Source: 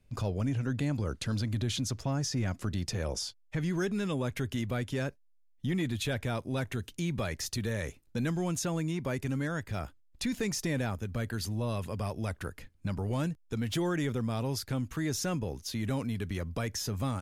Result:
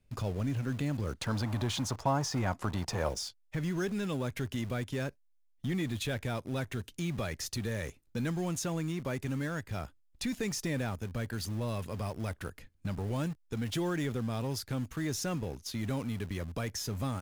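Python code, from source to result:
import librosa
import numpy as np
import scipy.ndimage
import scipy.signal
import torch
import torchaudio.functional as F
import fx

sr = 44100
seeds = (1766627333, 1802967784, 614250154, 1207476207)

p1 = fx.quant_dither(x, sr, seeds[0], bits=6, dither='none')
p2 = x + (p1 * librosa.db_to_amplitude(-11.5))
p3 = fx.peak_eq(p2, sr, hz=900.0, db=14.0, octaves=1.3, at=(1.2, 3.09))
y = p3 * librosa.db_to_amplitude(-4.0)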